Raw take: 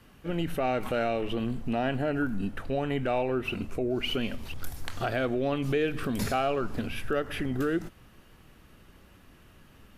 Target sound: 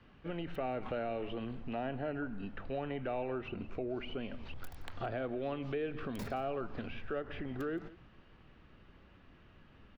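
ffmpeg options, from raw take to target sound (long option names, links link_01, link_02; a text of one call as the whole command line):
ffmpeg -i in.wav -filter_complex "[0:a]acrossover=split=490|1000[link_01][link_02][link_03];[link_01]acompressor=threshold=-35dB:ratio=4[link_04];[link_02]acompressor=threshold=-34dB:ratio=4[link_05];[link_03]acompressor=threshold=-43dB:ratio=4[link_06];[link_04][link_05][link_06]amix=inputs=3:normalize=0,acrossover=split=4300[link_07][link_08];[link_08]acrusher=bits=4:dc=4:mix=0:aa=0.000001[link_09];[link_07][link_09]amix=inputs=2:normalize=0,aecho=1:1:172:0.112,volume=-4.5dB" out.wav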